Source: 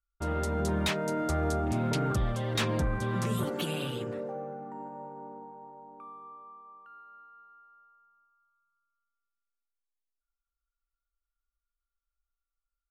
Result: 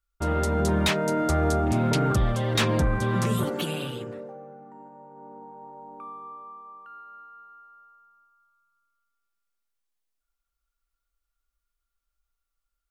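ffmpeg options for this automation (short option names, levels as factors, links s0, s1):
-af "volume=7.5,afade=t=out:st=3.21:d=1.17:silence=0.281838,afade=t=in:st=5.07:d=0.87:silence=0.266073"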